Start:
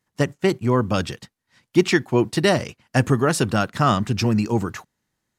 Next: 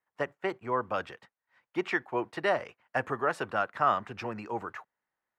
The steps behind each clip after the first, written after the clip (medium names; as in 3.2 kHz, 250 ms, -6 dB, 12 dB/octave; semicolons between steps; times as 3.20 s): three-band isolator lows -20 dB, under 490 Hz, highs -22 dB, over 2.3 kHz; trim -4 dB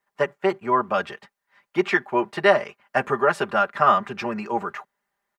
comb 5 ms, depth 72%; trim +7 dB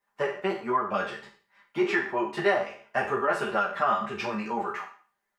spectral sustain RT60 0.43 s; compression 1.5:1, threshold -26 dBFS, peak gain reduction 6 dB; three-phase chorus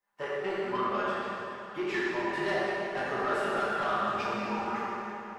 saturation -21.5 dBFS, distortion -13 dB; plate-style reverb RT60 3.2 s, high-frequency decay 0.8×, DRR -5.5 dB; trim -7 dB